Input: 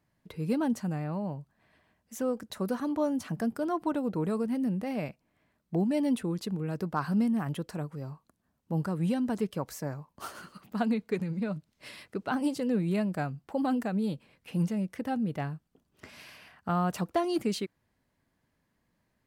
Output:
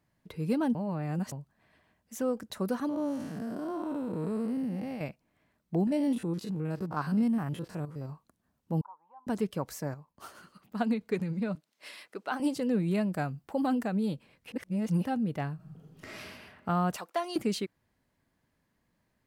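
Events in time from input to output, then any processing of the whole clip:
0.75–1.32 reverse
2.89–5.01 time blur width 0.223 s
5.87–8.1 stepped spectrum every 50 ms
8.81–9.27 Butterworth band-pass 930 Hz, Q 4.7
9.94–11.01 upward expander, over -38 dBFS
11.55–12.4 Bessel high-pass 490 Hz
13.13–13.68 high shelf 11000 Hz +7 dB
14.52–15.05 reverse
15.55–16.18 reverb throw, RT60 1.5 s, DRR -7 dB
16.96–17.36 HPF 650 Hz

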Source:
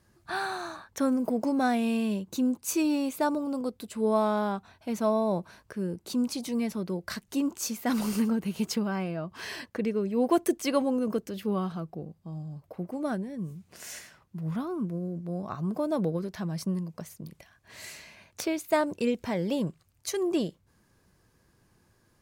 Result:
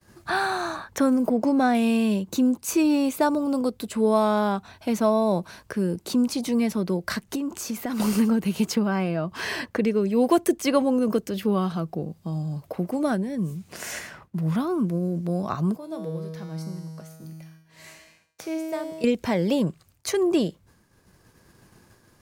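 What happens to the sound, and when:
1.28–1.75 high shelf 3700 Hz -10.5 dB
7.35–8 compressor 10:1, threshold -34 dBFS
15.76–19.04 resonator 160 Hz, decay 1.5 s, mix 90%
whole clip: expander -58 dBFS; three-band squash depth 40%; gain +6 dB

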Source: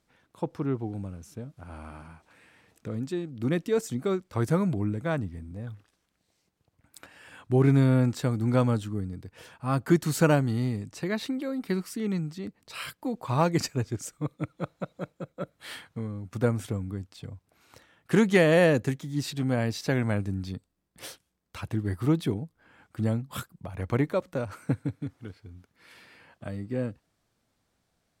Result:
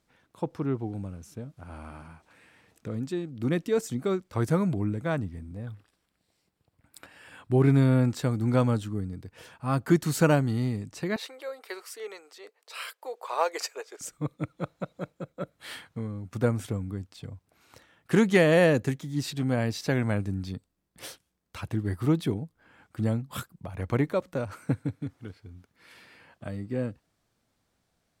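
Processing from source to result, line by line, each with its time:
5.56–8.1 notch 6300 Hz, Q 6.1
11.16–14.01 elliptic high-pass 440 Hz, stop band 70 dB

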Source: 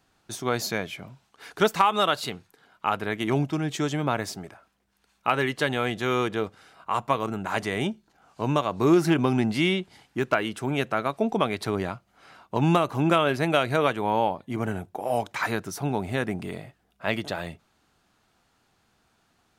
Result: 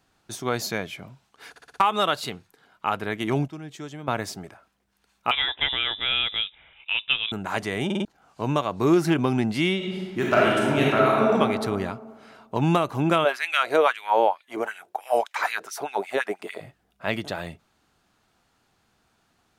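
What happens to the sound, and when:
1.5 stutter in place 0.06 s, 5 plays
3.48–4.08 gain -10.5 dB
5.31–7.32 inverted band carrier 3700 Hz
7.85 stutter in place 0.05 s, 4 plays
9.76–11.34 reverb throw, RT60 1.8 s, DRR -5 dB
13.24–16.6 LFO high-pass sine 1.5 Hz -> 8 Hz 390–2500 Hz

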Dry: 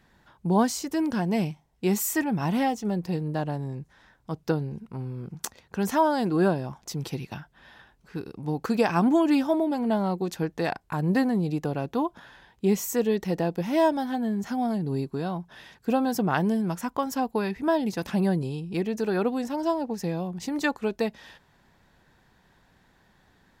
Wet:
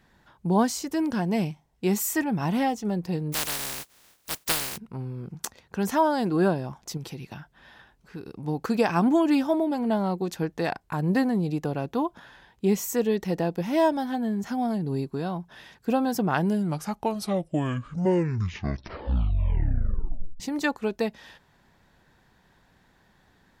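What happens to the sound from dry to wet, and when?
3.32–4.76 spectral contrast lowered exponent 0.12
6.97–8.27 compressor 2.5:1, threshold -35 dBFS
16.3 tape stop 4.10 s

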